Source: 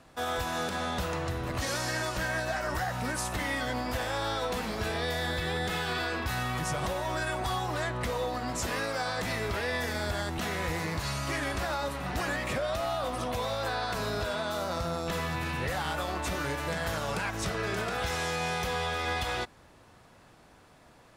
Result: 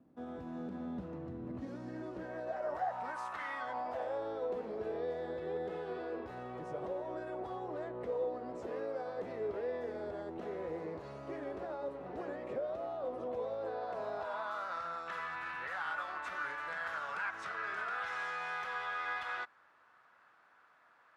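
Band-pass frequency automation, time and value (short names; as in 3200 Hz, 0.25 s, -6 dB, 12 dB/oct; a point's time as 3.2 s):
band-pass, Q 2.6
1.86 s 250 Hz
3.43 s 1300 Hz
4.28 s 440 Hz
13.7 s 440 Hz
14.66 s 1400 Hz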